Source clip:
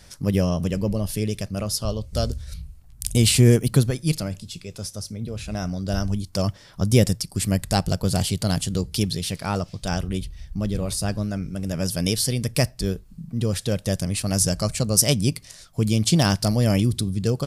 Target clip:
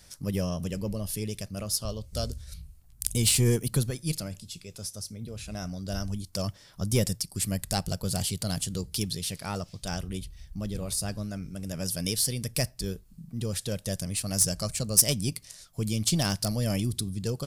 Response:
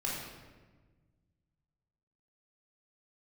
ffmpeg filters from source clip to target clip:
-af "highshelf=frequency=5900:gain=-4.5,aeval=exprs='1.33*(cos(1*acos(clip(val(0)/1.33,-1,1)))-cos(1*PI/2))+0.075*(cos(6*acos(clip(val(0)/1.33,-1,1)))-cos(6*PI/2))':channel_layout=same,crystalizer=i=2:c=0,volume=-8dB"

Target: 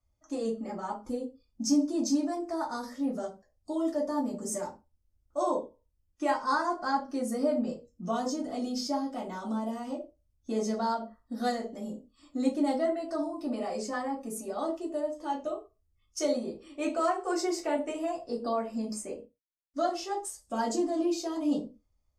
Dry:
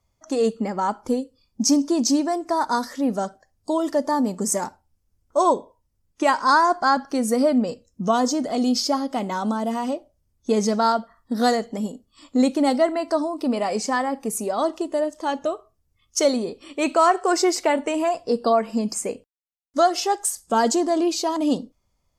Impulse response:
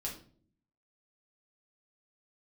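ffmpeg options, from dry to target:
-filter_complex "[0:a]asettb=1/sr,asplit=3[link_01][link_02][link_03];[link_01]atrim=end=19.014[link_04];[link_02]atrim=start=19.01:end=20.43,asetpts=PTS-STARTPTS,afade=type=in:duration=0.004:curve=qsin,afade=type=out:start_time=1.416:duration=0.004:curve=qsin,highshelf=frequency=9800:gain=-8[link_05];[link_03]atrim=start=20.426[link_06];[link_04][link_05]acrossfade=duration=0.004:curve1=hsin:curve2=qsin[link_07];[link_07][link_06]acrossfade=duration=0.004:curve1=qsin:curve2=hsin[link_08];[1:a]atrim=start_sample=2205,afade=type=out:start_time=0.35:duration=0.01,atrim=end_sample=15876,asetrate=83790,aresample=44100[link_09];[link_08][link_09]afir=irnorm=-1:irlink=0,volume=-6.5dB"

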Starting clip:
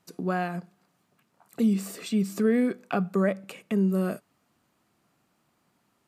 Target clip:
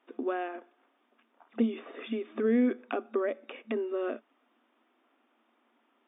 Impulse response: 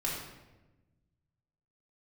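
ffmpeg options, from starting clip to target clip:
-filter_complex "[0:a]acrossover=split=490|2300[link_01][link_02][link_03];[link_01]acompressor=threshold=-23dB:ratio=4[link_04];[link_02]acompressor=threshold=-39dB:ratio=4[link_05];[link_03]acompressor=threshold=-50dB:ratio=4[link_06];[link_04][link_05][link_06]amix=inputs=3:normalize=0,afftfilt=real='re*between(b*sr/4096,220,3700)':imag='im*between(b*sr/4096,220,3700)':win_size=4096:overlap=0.75,volume=1.5dB"

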